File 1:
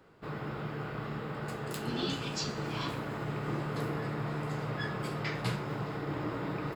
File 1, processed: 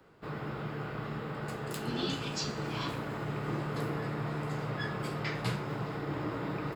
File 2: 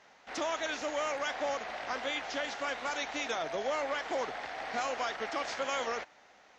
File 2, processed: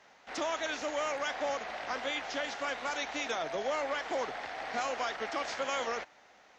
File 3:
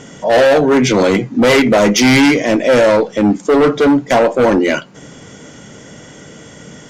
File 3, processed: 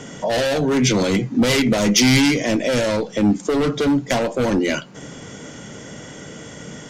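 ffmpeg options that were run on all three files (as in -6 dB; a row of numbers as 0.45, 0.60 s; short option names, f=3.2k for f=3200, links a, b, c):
-filter_complex "[0:a]acrossover=split=210|3000[a][b][c];[b]acompressor=threshold=-21dB:ratio=4[d];[a][d][c]amix=inputs=3:normalize=0"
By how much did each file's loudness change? 0.0, 0.0, -6.5 LU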